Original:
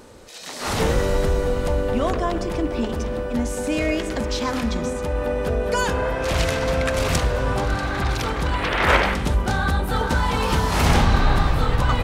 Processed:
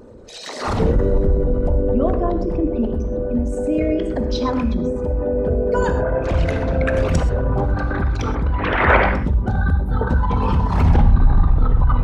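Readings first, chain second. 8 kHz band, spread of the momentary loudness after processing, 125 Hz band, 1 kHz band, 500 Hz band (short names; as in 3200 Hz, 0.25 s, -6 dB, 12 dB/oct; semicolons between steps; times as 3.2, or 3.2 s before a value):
-10.5 dB, 7 LU, +4.5 dB, -0.5 dB, +2.5 dB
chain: formant sharpening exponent 2; non-linear reverb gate 0.15 s flat, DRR 8 dB; gain +3 dB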